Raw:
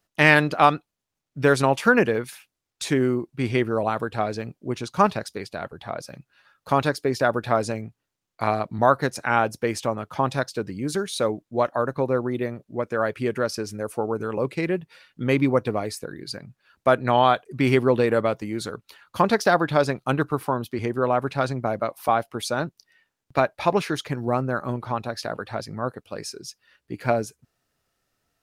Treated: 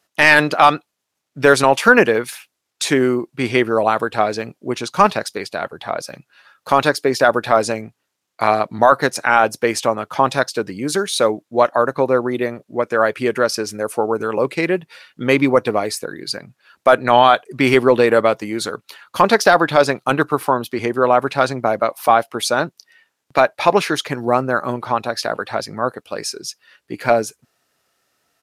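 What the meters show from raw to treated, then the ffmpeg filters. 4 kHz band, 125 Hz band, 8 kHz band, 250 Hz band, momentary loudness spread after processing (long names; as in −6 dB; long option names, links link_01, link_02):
+9.0 dB, −0.5 dB, +9.5 dB, +4.0 dB, 13 LU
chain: -af "highpass=frequency=380:poles=1,apsyclip=11dB,aresample=32000,aresample=44100,volume=-1.5dB"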